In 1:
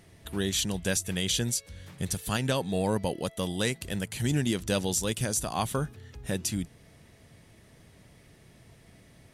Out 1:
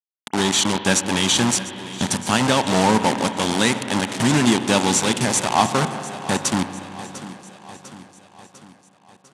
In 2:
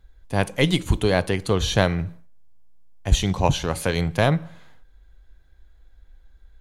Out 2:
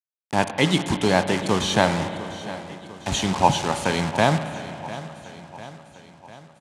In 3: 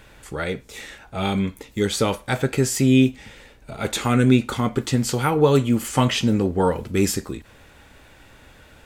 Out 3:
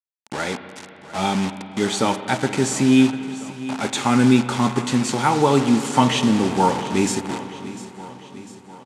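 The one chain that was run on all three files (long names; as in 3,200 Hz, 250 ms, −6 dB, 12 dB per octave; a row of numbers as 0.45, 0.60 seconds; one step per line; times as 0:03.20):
notch filter 5,000 Hz, Q 10
bit reduction 5 bits
loudspeaker in its box 160–9,100 Hz, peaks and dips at 230 Hz +4 dB, 480 Hz −5 dB, 870 Hz +8 dB
repeating echo 699 ms, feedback 56%, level −16 dB
spring reverb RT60 3.3 s, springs 32/57 ms, chirp 55 ms, DRR 9.5 dB
normalise the peak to −1.5 dBFS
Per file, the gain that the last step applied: +10.0, +1.0, +1.0 decibels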